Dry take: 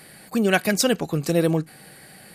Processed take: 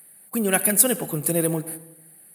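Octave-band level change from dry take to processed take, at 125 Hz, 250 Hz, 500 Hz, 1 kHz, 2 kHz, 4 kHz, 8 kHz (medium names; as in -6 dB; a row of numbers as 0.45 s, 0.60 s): -4.0 dB, -3.0 dB, -3.0 dB, -3.0 dB, -3.5 dB, -6.5 dB, +9.0 dB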